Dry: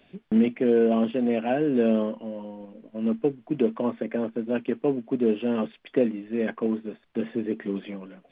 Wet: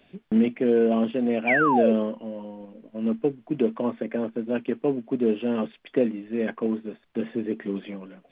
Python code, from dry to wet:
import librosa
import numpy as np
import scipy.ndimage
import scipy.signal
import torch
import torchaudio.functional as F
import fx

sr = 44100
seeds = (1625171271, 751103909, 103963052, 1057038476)

y = fx.spec_paint(x, sr, seeds[0], shape='fall', start_s=1.47, length_s=0.46, low_hz=410.0, high_hz=2500.0, level_db=-22.0)